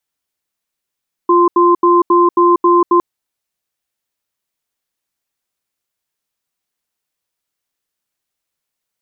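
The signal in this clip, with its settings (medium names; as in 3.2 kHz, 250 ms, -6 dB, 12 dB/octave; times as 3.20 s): cadence 349 Hz, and 1.04 kHz, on 0.19 s, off 0.08 s, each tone -9.5 dBFS 1.71 s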